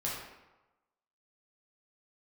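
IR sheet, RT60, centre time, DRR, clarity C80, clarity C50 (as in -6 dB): 1.1 s, 64 ms, -6.0 dB, 4.0 dB, 1.0 dB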